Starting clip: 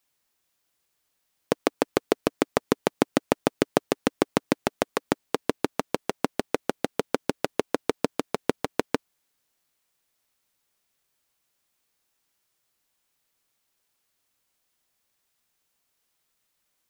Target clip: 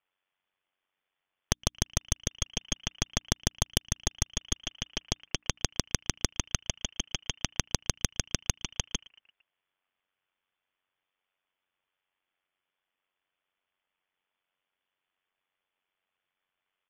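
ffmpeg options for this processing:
ffmpeg -i in.wav -filter_complex "[0:a]asplit=2[link_01][link_02];[link_02]alimiter=limit=-10dB:level=0:latency=1:release=243,volume=2dB[link_03];[link_01][link_03]amix=inputs=2:normalize=0,tremolo=f=93:d=0.71,highpass=frequency=53:poles=1,lowpass=frequency=3100:width_type=q:width=0.5098,lowpass=frequency=3100:width_type=q:width=0.6013,lowpass=frequency=3100:width_type=q:width=0.9,lowpass=frequency=3100:width_type=q:width=2.563,afreqshift=-3600,bandreject=frequency=60:width_type=h:width=6,bandreject=frequency=120:width_type=h:width=6,bandreject=frequency=180:width_type=h:width=6,bandreject=frequency=240:width_type=h:width=6,bandreject=frequency=300:width_type=h:width=6,asplit=5[link_04][link_05][link_06][link_07][link_08];[link_05]adelay=114,afreqshift=-130,volume=-20.5dB[link_09];[link_06]adelay=228,afreqshift=-260,volume=-25.7dB[link_10];[link_07]adelay=342,afreqshift=-390,volume=-30.9dB[link_11];[link_08]adelay=456,afreqshift=-520,volume=-36.1dB[link_12];[link_04][link_09][link_10][link_11][link_12]amix=inputs=5:normalize=0,aeval=exprs='0.944*(cos(1*acos(clip(val(0)/0.944,-1,1)))-cos(1*PI/2))+0.422*(cos(3*acos(clip(val(0)/0.944,-1,1)))-cos(3*PI/2))+0.299*(cos(4*acos(clip(val(0)/0.944,-1,1)))-cos(4*PI/2))':channel_layout=same,acompressor=threshold=-27dB:ratio=4,volume=2dB" out.wav

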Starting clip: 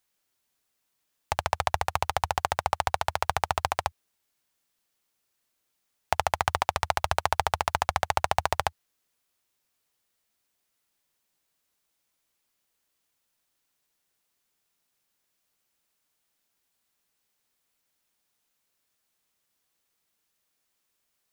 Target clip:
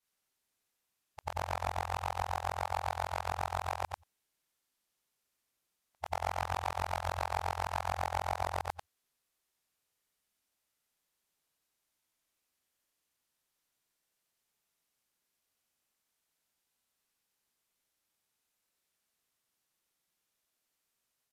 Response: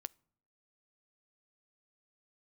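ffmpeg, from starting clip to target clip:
-af "afftfilt=real='re':imag='-im':win_size=8192:overlap=0.75,asoftclip=type=tanh:threshold=-22.5dB,aresample=32000,aresample=44100"

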